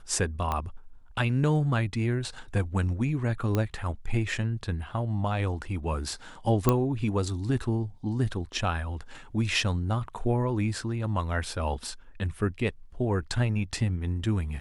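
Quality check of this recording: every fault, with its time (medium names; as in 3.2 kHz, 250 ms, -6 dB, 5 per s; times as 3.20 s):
0.52 s: pop -16 dBFS
3.55 s: pop -14 dBFS
6.69 s: pop -8 dBFS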